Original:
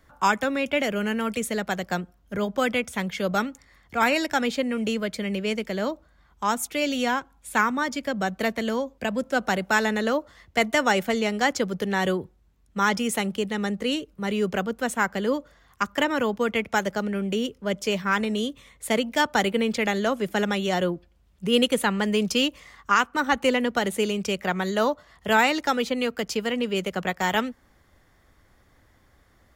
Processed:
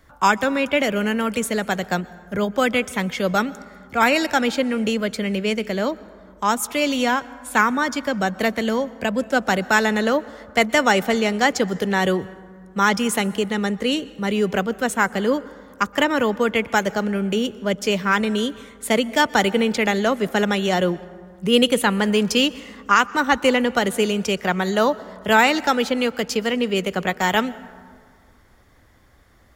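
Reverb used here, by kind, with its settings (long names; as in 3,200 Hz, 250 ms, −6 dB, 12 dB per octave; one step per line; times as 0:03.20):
dense smooth reverb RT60 2.1 s, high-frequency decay 0.4×, pre-delay 110 ms, DRR 19 dB
level +4.5 dB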